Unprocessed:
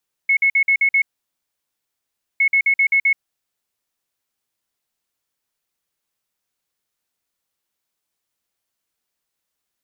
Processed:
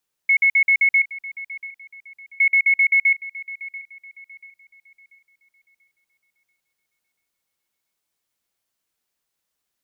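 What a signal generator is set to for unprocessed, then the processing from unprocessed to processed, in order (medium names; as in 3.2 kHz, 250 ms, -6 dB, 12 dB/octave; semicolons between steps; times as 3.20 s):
beep pattern sine 2.19 kHz, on 0.08 s, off 0.05 s, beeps 6, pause 1.38 s, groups 2, -12 dBFS
feedback echo behind a high-pass 687 ms, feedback 34%, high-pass 2.1 kHz, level -14 dB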